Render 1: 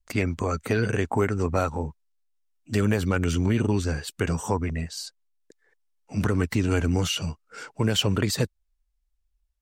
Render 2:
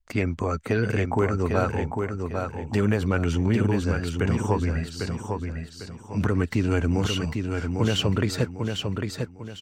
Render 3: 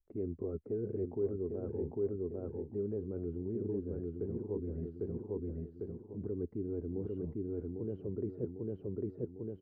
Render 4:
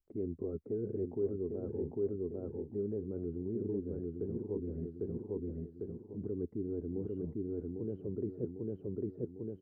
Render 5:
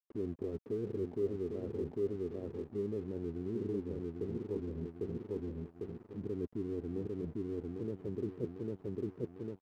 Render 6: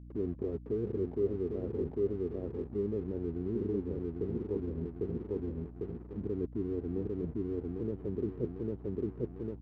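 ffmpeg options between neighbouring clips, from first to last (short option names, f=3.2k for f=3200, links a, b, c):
-filter_complex "[0:a]aemphasis=mode=reproduction:type=cd,asplit=2[a][b];[b]aecho=0:1:800|1600|2400|3200:0.562|0.186|0.0612|0.0202[c];[a][c]amix=inputs=2:normalize=0"
-af "areverse,acompressor=threshold=-31dB:ratio=10,areverse,lowpass=f=390:t=q:w=4.3,volume=-7.5dB"
-af "equalizer=f=240:w=0.38:g=6.5,volume=-5.5dB"
-af "aeval=exprs='sgn(val(0))*max(abs(val(0))-0.00133,0)':c=same"
-af "lowpass=f=1.7k:p=1,aeval=exprs='val(0)+0.00282*(sin(2*PI*60*n/s)+sin(2*PI*2*60*n/s)/2+sin(2*PI*3*60*n/s)/3+sin(2*PI*4*60*n/s)/4+sin(2*PI*5*60*n/s)/5)':c=same,volume=3.5dB"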